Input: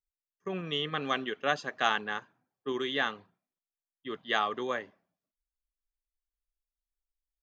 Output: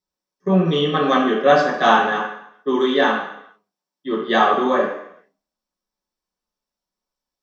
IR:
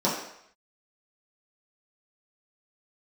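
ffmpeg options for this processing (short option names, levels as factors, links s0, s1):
-filter_complex "[0:a]asettb=1/sr,asplit=3[s0][s1][s2];[s0]atrim=end=2.114[s3];[s1]atrim=start=2.11:end=4.21,asetpts=PTS-STARTPTS,afade=t=in:d=0.004:c=qsin,afade=t=out:st=2.096:d=0.004:c=qsin,highpass=f=190:p=1[s4];[s2]atrim=start=4.206[s5];[s3][s4]acrossfade=d=0.004:c1=hsin:c2=qsin[s6];[s6][s5]acrossfade=d=0.004:c1=qsin:c2=hsin[s7];[1:a]atrim=start_sample=2205,asetrate=43659,aresample=44100[s8];[s7][s8]afir=irnorm=-1:irlink=0"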